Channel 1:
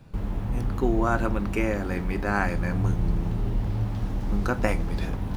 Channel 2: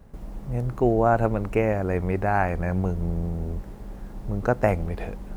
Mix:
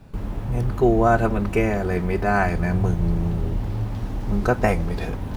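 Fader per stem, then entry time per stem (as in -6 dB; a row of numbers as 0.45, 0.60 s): +1.5, 0.0 dB; 0.00, 0.00 s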